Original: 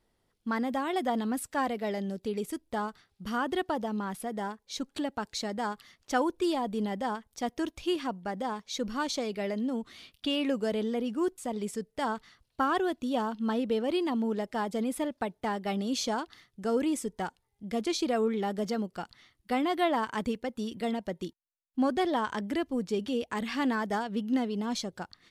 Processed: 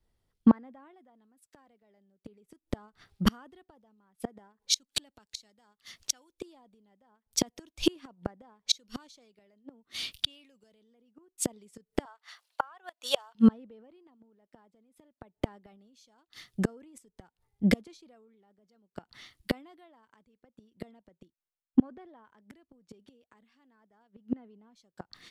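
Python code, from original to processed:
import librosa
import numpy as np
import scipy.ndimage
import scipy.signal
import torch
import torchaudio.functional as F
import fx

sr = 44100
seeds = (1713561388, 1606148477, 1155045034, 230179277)

p1 = fx.highpass(x, sr, hz=660.0, slope=24, at=(12.05, 13.35))
p2 = fx.over_compress(p1, sr, threshold_db=-32.0, ratio=-0.5)
p3 = p1 + (p2 * librosa.db_to_amplitude(-2.0))
p4 = fx.gate_flip(p3, sr, shuts_db=-21.0, range_db=-33)
p5 = fx.band_widen(p4, sr, depth_pct=70)
y = p5 * librosa.db_to_amplitude(5.0)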